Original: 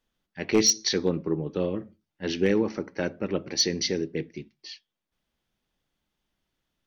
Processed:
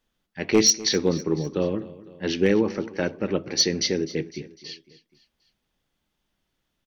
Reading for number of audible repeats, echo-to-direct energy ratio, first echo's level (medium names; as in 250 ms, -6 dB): 3, -17.0 dB, -18.5 dB